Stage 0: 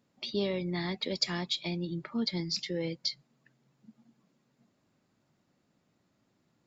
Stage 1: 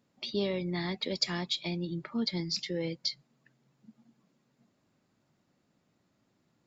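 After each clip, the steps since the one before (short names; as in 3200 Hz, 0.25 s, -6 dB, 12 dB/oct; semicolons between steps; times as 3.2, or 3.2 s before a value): nothing audible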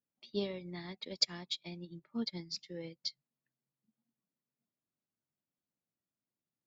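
upward expander 2.5:1, over -42 dBFS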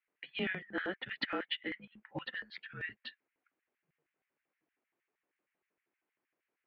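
mistuned SSB -380 Hz 260–2900 Hz; LFO high-pass square 6.4 Hz 340–1900 Hz; gain +12 dB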